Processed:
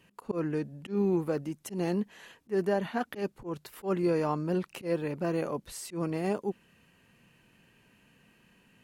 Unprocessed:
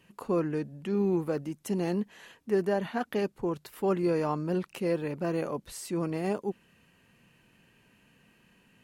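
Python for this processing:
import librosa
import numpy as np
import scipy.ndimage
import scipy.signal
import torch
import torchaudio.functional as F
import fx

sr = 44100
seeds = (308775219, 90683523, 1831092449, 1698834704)

y = fx.auto_swell(x, sr, attack_ms=113.0)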